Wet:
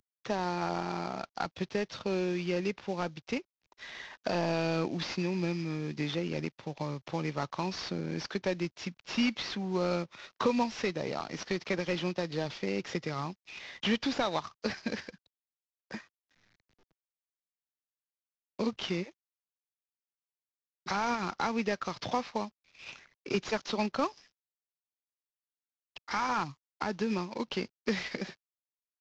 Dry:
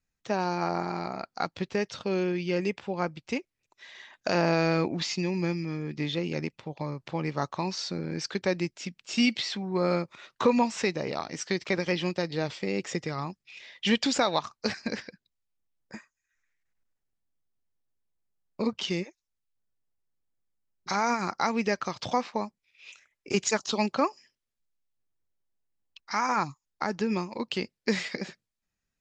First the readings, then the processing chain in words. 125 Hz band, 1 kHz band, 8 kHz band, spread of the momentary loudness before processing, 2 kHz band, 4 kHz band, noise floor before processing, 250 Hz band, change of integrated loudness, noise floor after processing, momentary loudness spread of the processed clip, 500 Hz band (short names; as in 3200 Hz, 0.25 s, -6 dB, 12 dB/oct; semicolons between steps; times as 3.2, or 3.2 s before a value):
-3.5 dB, -4.0 dB, -9.0 dB, 12 LU, -4.0 dB, -4.5 dB, -85 dBFS, -3.5 dB, -4.0 dB, under -85 dBFS, 12 LU, -4.0 dB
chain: CVSD 32 kbps; three-band squash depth 40%; gain -3 dB